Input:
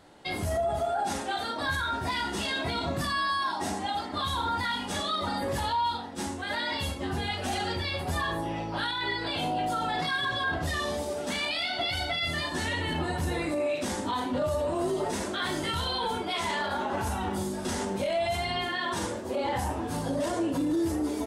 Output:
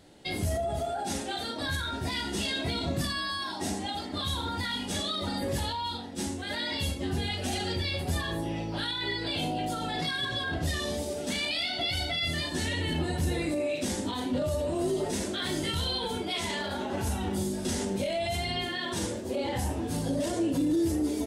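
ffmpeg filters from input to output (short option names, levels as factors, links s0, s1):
-af "equalizer=f=1100:w=0.91:g=-11,volume=1.33"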